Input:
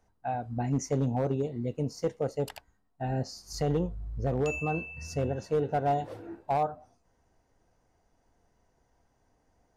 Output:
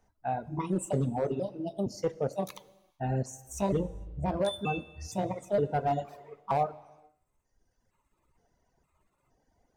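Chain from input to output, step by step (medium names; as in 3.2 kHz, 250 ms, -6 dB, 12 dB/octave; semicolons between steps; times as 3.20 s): pitch shift switched off and on +5 st, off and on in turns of 465 ms; gated-style reverb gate 490 ms falling, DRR 6 dB; reverb removal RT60 1.6 s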